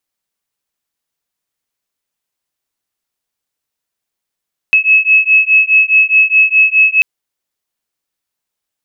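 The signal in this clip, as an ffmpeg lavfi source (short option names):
-f lavfi -i "aevalsrc='0.335*(sin(2*PI*2580*t)+sin(2*PI*2584.8*t))':d=2.29:s=44100"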